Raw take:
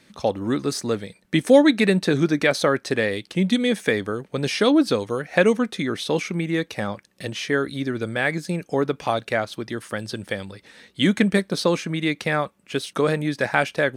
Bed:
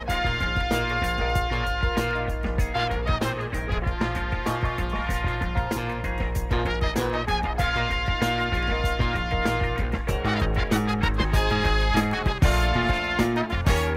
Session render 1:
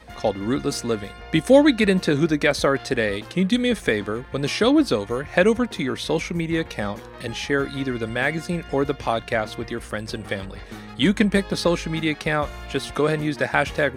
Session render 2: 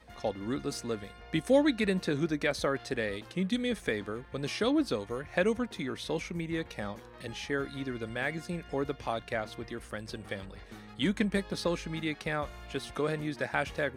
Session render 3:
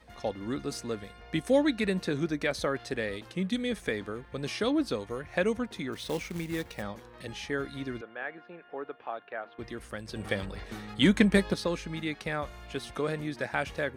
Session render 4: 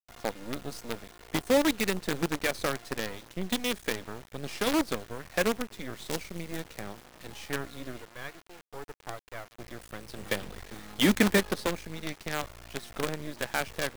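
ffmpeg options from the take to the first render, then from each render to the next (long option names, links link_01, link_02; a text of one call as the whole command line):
ffmpeg -i in.wav -i bed.wav -filter_complex "[1:a]volume=-15dB[link_01];[0:a][link_01]amix=inputs=2:normalize=0" out.wav
ffmpeg -i in.wav -af "volume=-10.5dB" out.wav
ffmpeg -i in.wav -filter_complex "[0:a]asplit=3[link_01][link_02][link_03];[link_01]afade=type=out:start_time=5.92:duration=0.02[link_04];[link_02]acrusher=bits=3:mode=log:mix=0:aa=0.000001,afade=type=in:start_time=5.92:duration=0.02,afade=type=out:start_time=6.81:duration=0.02[link_05];[link_03]afade=type=in:start_time=6.81:duration=0.02[link_06];[link_04][link_05][link_06]amix=inputs=3:normalize=0,asettb=1/sr,asplit=3[link_07][link_08][link_09];[link_07]atrim=end=8.014[link_10];[link_08]atrim=start=8.01:end=9.59,asetpts=PTS-STARTPTS,afade=type=in:duration=0.004:curve=qsin,afade=type=out:start_time=1.576:duration=0.004:curve=qsin,highpass=500,equalizer=frequency=570:width_type=q:width=4:gain=-4,equalizer=frequency=1000:width_type=q:width=4:gain=-4,equalizer=frequency=2100:width_type=q:width=4:gain=-10,lowpass=frequency=2400:width=0.5412,lowpass=frequency=2400:width=1.3066[link_11];[link_09]atrim=start=9.586[link_12];[link_10][link_11]acrossfade=duration=0.004:curve1=hsin:curve2=qsin[link_13];[link_13][link_12]acrossfade=duration=0.004:curve1=qsin:curve2=hsin,asplit=3[link_14][link_15][link_16];[link_14]atrim=end=10.162[link_17];[link_15]atrim=start=10.158:end=11.542,asetpts=PTS-STARTPTS,volume=7dB[link_18];[link_16]atrim=start=11.538[link_19];[link_17][link_18]acrossfade=duration=0.004:curve1=hsin:curve2=hsin[link_20];[link_20][link_19]acrossfade=duration=0.004:curve1=hsin:curve2=hsin" out.wav
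ffmpeg -i in.wav -filter_complex "[0:a]acrossover=split=150[link_01][link_02];[link_01]aeval=exprs='(mod(59.6*val(0)+1,2)-1)/59.6':channel_layout=same[link_03];[link_03][link_02]amix=inputs=2:normalize=0,acrusher=bits=5:dc=4:mix=0:aa=0.000001" out.wav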